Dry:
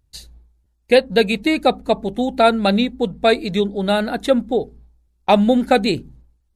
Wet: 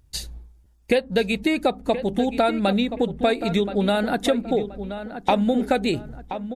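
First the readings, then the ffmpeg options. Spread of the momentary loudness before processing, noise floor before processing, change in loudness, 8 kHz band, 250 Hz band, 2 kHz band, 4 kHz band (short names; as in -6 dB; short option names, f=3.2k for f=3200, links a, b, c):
8 LU, -65 dBFS, -5.0 dB, n/a, -3.5 dB, -5.0 dB, -5.5 dB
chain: -filter_complex "[0:a]bandreject=f=4.1k:w=15,acompressor=threshold=-27dB:ratio=4,asplit=2[a][b];[b]adelay=1026,lowpass=f=2.4k:p=1,volume=-10.5dB,asplit=2[c][d];[d]adelay=1026,lowpass=f=2.4k:p=1,volume=0.33,asplit=2[e][f];[f]adelay=1026,lowpass=f=2.4k:p=1,volume=0.33,asplit=2[g][h];[h]adelay=1026,lowpass=f=2.4k:p=1,volume=0.33[i];[a][c][e][g][i]amix=inputs=5:normalize=0,volume=7dB"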